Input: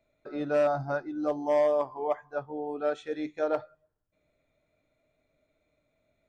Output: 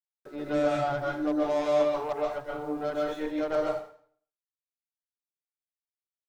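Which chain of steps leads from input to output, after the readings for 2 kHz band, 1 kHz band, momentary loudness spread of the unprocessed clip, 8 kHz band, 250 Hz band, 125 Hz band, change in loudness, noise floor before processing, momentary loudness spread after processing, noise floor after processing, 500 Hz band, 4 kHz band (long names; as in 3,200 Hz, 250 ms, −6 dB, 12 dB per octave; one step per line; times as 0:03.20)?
+2.0 dB, +1.0 dB, 11 LU, can't be measured, +4.0 dB, +1.5 dB, +1.0 dB, −77 dBFS, 9 LU, below −85 dBFS, 0.0 dB, +7.0 dB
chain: harmonic generator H 8 −23 dB, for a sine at −16.5 dBFS
centre clipping without the shift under −52.5 dBFS
dense smooth reverb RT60 0.54 s, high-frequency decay 0.9×, pre-delay 115 ms, DRR −3.5 dB
level −4 dB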